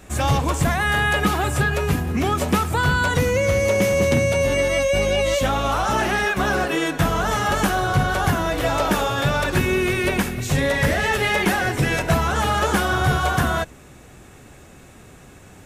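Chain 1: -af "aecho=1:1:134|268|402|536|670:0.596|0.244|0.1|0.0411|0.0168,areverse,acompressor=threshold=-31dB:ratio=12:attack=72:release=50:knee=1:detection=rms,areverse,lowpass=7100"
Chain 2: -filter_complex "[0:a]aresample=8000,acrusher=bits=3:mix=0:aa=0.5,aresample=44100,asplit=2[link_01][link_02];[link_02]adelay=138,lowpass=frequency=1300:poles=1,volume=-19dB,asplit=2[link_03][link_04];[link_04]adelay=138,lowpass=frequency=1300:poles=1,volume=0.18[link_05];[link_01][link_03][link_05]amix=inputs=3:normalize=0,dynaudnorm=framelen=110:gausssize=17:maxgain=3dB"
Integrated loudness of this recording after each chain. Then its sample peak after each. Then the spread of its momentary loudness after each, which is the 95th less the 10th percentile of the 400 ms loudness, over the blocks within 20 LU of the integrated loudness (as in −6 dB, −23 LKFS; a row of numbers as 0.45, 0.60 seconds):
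−29.5, −17.0 LKFS; −17.5, −6.0 dBFS; 4, 3 LU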